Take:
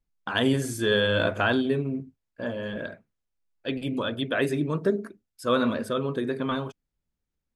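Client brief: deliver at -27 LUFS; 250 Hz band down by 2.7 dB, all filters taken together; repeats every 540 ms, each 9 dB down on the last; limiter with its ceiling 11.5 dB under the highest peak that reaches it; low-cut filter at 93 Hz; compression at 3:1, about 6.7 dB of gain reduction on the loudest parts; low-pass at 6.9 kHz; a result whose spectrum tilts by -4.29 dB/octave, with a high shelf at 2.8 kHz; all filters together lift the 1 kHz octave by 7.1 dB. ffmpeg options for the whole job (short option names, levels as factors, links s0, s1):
-af "highpass=93,lowpass=6900,equalizer=f=250:t=o:g=-3.5,equalizer=f=1000:t=o:g=8,highshelf=f=2800:g=9,acompressor=threshold=0.0631:ratio=3,alimiter=limit=0.0794:level=0:latency=1,aecho=1:1:540|1080|1620|2160:0.355|0.124|0.0435|0.0152,volume=2"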